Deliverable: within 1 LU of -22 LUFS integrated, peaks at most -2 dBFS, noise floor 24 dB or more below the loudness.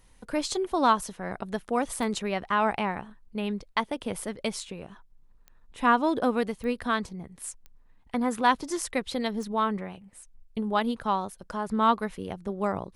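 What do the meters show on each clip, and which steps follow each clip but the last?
clicks 5; loudness -28.5 LUFS; peak -10.0 dBFS; loudness target -22.0 LUFS
-> de-click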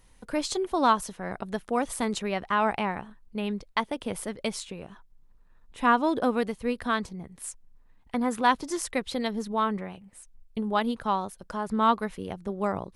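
clicks 0; loudness -28.5 LUFS; peak -10.0 dBFS; loudness target -22.0 LUFS
-> gain +6.5 dB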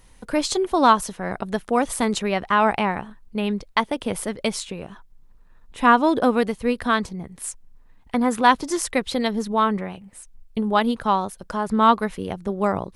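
loudness -22.0 LUFS; peak -3.5 dBFS; noise floor -51 dBFS

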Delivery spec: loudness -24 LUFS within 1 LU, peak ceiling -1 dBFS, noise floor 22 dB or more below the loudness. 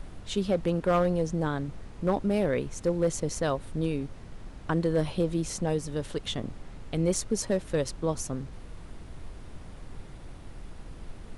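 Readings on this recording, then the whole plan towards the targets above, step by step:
clipped 0.3%; flat tops at -17.5 dBFS; noise floor -45 dBFS; noise floor target -52 dBFS; loudness -29.5 LUFS; peak -17.5 dBFS; loudness target -24.0 LUFS
-> clip repair -17.5 dBFS; noise print and reduce 7 dB; gain +5.5 dB

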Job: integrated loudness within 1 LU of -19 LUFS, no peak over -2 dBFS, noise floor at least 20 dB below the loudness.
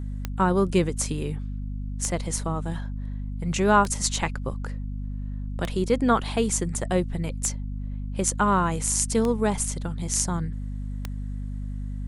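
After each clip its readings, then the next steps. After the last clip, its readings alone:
clicks 7; hum 50 Hz; harmonics up to 250 Hz; hum level -29 dBFS; loudness -26.5 LUFS; peak -4.0 dBFS; loudness target -19.0 LUFS
-> de-click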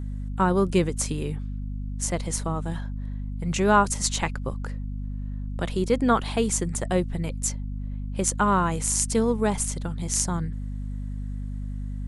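clicks 0; hum 50 Hz; harmonics up to 250 Hz; hum level -29 dBFS
-> de-hum 50 Hz, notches 5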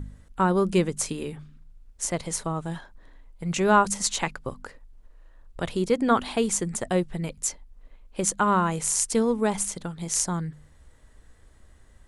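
hum none; loudness -25.5 LUFS; peak -5.0 dBFS; loudness target -19.0 LUFS
-> gain +6.5 dB; limiter -2 dBFS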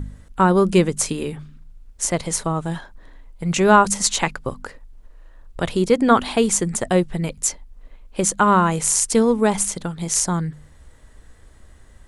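loudness -19.5 LUFS; peak -2.0 dBFS; noise floor -48 dBFS

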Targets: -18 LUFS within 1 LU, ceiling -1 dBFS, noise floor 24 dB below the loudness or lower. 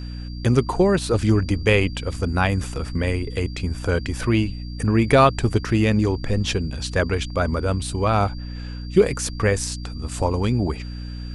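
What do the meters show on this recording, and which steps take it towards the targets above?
hum 60 Hz; harmonics up to 300 Hz; hum level -29 dBFS; steady tone 4700 Hz; tone level -44 dBFS; loudness -22.0 LUFS; peak -3.5 dBFS; loudness target -18.0 LUFS
-> de-hum 60 Hz, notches 5; notch 4700 Hz, Q 30; gain +4 dB; limiter -1 dBFS

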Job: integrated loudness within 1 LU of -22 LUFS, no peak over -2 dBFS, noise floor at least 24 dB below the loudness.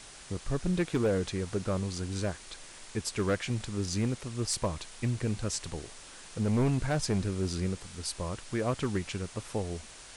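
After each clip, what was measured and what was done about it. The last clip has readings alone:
clipped 1.2%; flat tops at -22.0 dBFS; noise floor -49 dBFS; noise floor target -57 dBFS; loudness -32.5 LUFS; peak -22.0 dBFS; loudness target -22.0 LUFS
-> clip repair -22 dBFS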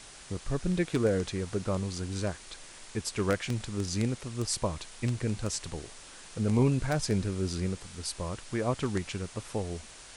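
clipped 0.0%; noise floor -49 dBFS; noise floor target -56 dBFS
-> noise print and reduce 7 dB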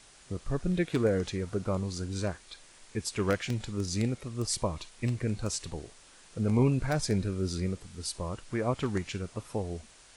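noise floor -56 dBFS; loudness -32.0 LUFS; peak -13.5 dBFS; loudness target -22.0 LUFS
-> gain +10 dB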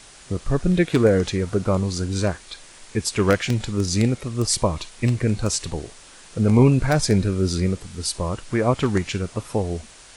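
loudness -22.0 LUFS; peak -3.5 dBFS; noise floor -46 dBFS

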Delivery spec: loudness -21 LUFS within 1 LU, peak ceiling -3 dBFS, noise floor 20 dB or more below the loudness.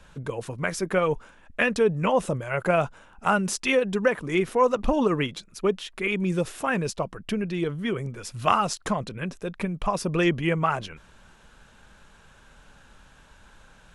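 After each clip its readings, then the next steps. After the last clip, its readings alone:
loudness -26.0 LUFS; peak -5.5 dBFS; loudness target -21.0 LUFS
-> gain +5 dB; limiter -3 dBFS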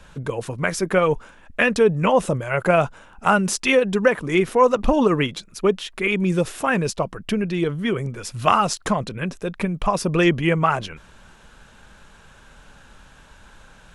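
loudness -21.0 LUFS; peak -3.0 dBFS; noise floor -49 dBFS

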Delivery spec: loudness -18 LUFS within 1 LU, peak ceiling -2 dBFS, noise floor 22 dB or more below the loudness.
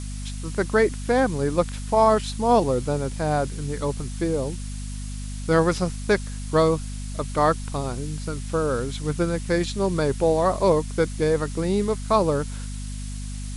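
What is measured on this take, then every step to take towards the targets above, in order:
hum 50 Hz; harmonics up to 250 Hz; hum level -29 dBFS; noise floor -32 dBFS; noise floor target -46 dBFS; loudness -23.5 LUFS; peak -6.5 dBFS; loudness target -18.0 LUFS
-> notches 50/100/150/200/250 Hz; noise print and reduce 14 dB; gain +5.5 dB; limiter -2 dBFS

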